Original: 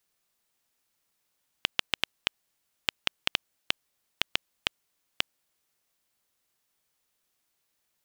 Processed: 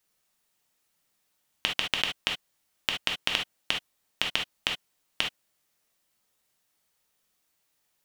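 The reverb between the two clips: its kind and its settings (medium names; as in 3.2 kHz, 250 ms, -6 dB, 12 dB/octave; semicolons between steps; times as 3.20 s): gated-style reverb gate 90 ms flat, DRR 0.5 dB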